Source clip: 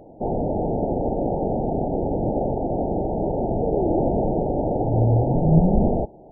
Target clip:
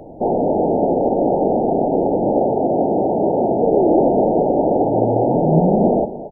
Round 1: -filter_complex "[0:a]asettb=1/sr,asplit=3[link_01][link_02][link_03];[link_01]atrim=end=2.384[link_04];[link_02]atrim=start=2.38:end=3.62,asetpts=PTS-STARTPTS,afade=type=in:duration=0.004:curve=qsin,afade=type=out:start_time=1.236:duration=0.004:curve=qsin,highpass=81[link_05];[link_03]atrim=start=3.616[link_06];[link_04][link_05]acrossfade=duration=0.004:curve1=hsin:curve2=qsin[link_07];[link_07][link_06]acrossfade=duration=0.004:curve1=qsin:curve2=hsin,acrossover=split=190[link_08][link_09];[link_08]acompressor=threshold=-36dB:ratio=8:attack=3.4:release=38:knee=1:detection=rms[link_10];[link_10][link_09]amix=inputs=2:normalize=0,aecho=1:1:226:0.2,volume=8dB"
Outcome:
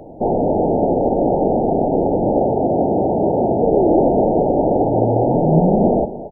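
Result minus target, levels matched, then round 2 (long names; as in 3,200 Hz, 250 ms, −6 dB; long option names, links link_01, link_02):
downward compressor: peak gain reduction −9 dB
-filter_complex "[0:a]asettb=1/sr,asplit=3[link_01][link_02][link_03];[link_01]atrim=end=2.384[link_04];[link_02]atrim=start=2.38:end=3.62,asetpts=PTS-STARTPTS,afade=type=in:duration=0.004:curve=qsin,afade=type=out:start_time=1.236:duration=0.004:curve=qsin,highpass=81[link_05];[link_03]atrim=start=3.616[link_06];[link_04][link_05]acrossfade=duration=0.004:curve1=hsin:curve2=qsin[link_07];[link_07][link_06]acrossfade=duration=0.004:curve1=qsin:curve2=hsin,acrossover=split=190[link_08][link_09];[link_08]acompressor=threshold=-46dB:ratio=8:attack=3.4:release=38:knee=1:detection=rms[link_10];[link_10][link_09]amix=inputs=2:normalize=0,aecho=1:1:226:0.2,volume=8dB"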